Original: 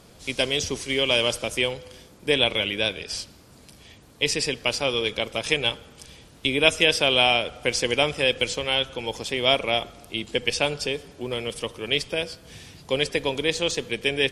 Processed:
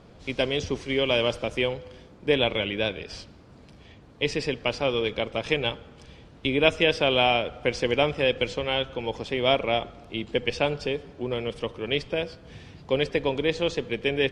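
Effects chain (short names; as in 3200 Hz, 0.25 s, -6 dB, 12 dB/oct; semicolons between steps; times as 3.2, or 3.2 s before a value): tape spacing loss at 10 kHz 24 dB; gain +2 dB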